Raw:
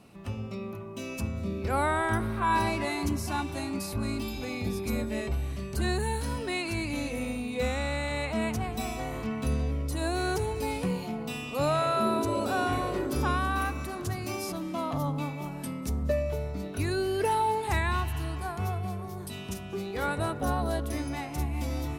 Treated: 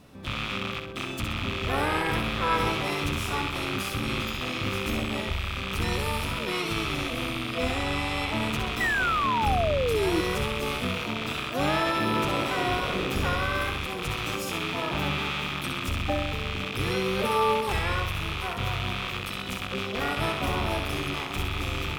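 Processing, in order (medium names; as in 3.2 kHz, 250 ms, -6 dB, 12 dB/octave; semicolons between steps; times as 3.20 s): rattle on loud lows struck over -39 dBFS, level -19 dBFS; in parallel at +0.5 dB: peak limiter -24 dBFS, peak gain reduction 10 dB; on the sum: harmony voices -12 st -3 dB, +5 st -3 dB; thinning echo 64 ms, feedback 45%, level -6 dB; painted sound fall, 8.80–10.21 s, 310–2000 Hz -19 dBFS; trim -7 dB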